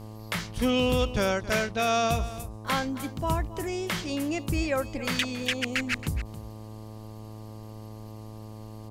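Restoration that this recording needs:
clipped peaks rebuilt −15 dBFS
hum removal 108.4 Hz, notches 11
echo removal 273 ms −15 dB

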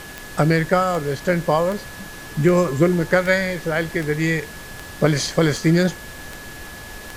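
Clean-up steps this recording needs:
click removal
notch filter 1,700 Hz, Q 30
noise reduction from a noise print 28 dB

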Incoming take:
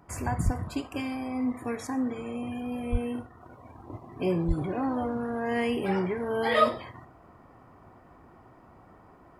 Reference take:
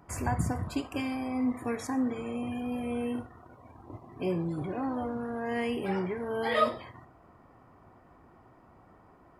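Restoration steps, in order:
0:00.44–0:00.56: high-pass filter 140 Hz 24 dB per octave
0:02.91–0:03.03: high-pass filter 140 Hz 24 dB per octave
0:03.41: level correction −3.5 dB
0:04.47–0:04.59: high-pass filter 140 Hz 24 dB per octave

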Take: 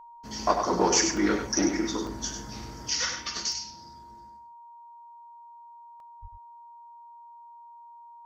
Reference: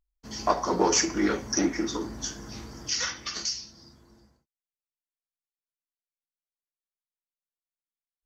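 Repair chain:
notch filter 940 Hz, Q 30
0:06.21–0:06.33: high-pass filter 140 Hz 24 dB per octave
repair the gap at 0:01.17/0:02.07/0:03.52/0:06.00, 1.8 ms
echo removal 98 ms −7 dB

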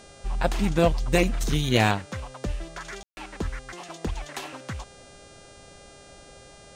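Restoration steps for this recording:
clipped peaks rebuilt −8.5 dBFS
hum removal 402.7 Hz, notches 24
ambience match 0:03.03–0:03.17

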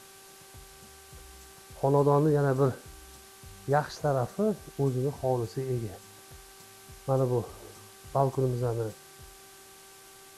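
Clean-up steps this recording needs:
hum removal 388.5 Hz, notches 4
noise reduction from a noise print 22 dB

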